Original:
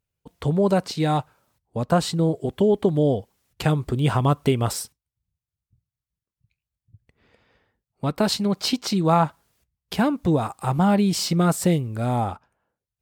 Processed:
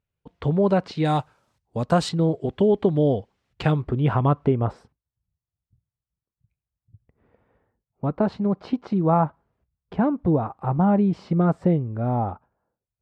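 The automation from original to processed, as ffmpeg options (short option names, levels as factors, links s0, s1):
-af "asetnsamples=n=441:p=0,asendcmd='1.05 lowpass f 7400;2.09 lowpass f 3500;3.82 lowpass f 1900;4.46 lowpass f 1100',lowpass=3000"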